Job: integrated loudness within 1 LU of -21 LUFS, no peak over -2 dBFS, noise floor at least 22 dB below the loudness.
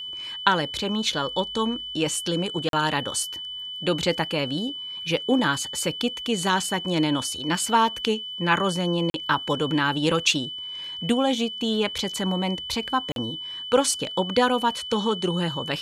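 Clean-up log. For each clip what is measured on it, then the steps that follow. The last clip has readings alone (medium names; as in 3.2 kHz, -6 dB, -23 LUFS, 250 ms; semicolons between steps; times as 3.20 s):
dropouts 3; longest dropout 42 ms; steady tone 3 kHz; tone level -32 dBFS; loudness -24.5 LUFS; peak level -3.0 dBFS; loudness target -21.0 LUFS
-> interpolate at 2.69/9.10/13.12 s, 42 ms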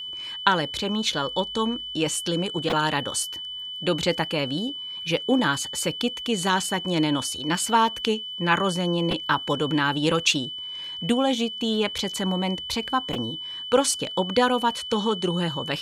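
dropouts 0; steady tone 3 kHz; tone level -32 dBFS
-> band-stop 3 kHz, Q 30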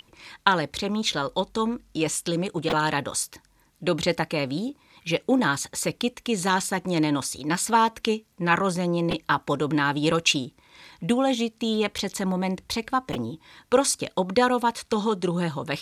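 steady tone not found; loudness -25.0 LUFS; peak level -3.0 dBFS; loudness target -21.0 LUFS
-> trim +4 dB; peak limiter -2 dBFS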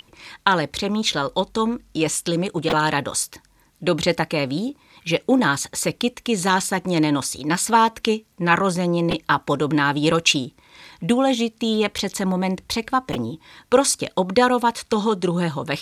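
loudness -21.0 LUFS; peak level -2.0 dBFS; noise floor -58 dBFS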